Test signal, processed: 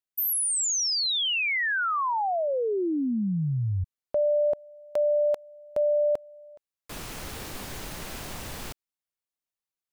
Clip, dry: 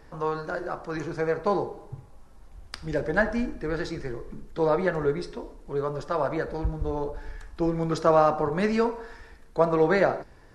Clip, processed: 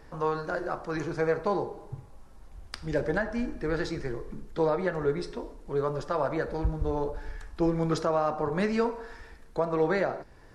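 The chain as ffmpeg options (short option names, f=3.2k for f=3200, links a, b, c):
-af "alimiter=limit=-16dB:level=0:latency=1:release=420"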